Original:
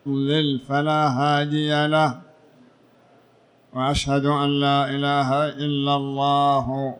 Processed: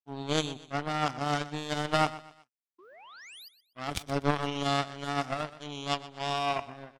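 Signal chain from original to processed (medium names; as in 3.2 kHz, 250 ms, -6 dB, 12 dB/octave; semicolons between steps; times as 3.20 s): painted sound rise, 2.78–3.49 s, 330–5100 Hz -26 dBFS; power-law waveshaper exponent 3; on a send: feedback delay 123 ms, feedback 30%, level -16.5 dB; on the sum: tape noise reduction on one side only encoder only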